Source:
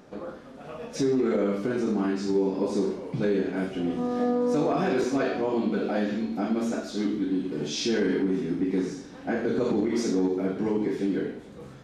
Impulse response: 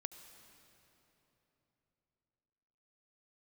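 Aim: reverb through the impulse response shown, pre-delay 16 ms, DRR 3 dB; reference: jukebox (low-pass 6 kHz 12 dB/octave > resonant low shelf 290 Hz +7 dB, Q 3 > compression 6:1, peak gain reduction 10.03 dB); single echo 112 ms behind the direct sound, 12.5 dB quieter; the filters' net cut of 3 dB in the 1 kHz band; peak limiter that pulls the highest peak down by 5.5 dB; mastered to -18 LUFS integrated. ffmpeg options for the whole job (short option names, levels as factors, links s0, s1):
-filter_complex "[0:a]equalizer=f=1000:t=o:g=-3,alimiter=limit=0.0891:level=0:latency=1,aecho=1:1:112:0.237,asplit=2[s0][s1];[1:a]atrim=start_sample=2205,adelay=16[s2];[s1][s2]afir=irnorm=-1:irlink=0,volume=1.06[s3];[s0][s3]amix=inputs=2:normalize=0,lowpass=6000,lowshelf=f=290:t=q:w=3:g=7,acompressor=threshold=0.0794:ratio=6,volume=2.66"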